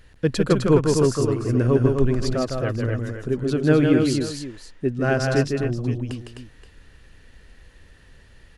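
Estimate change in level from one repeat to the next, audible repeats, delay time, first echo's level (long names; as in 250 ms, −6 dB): repeats not evenly spaced, 3, 157 ms, −4.5 dB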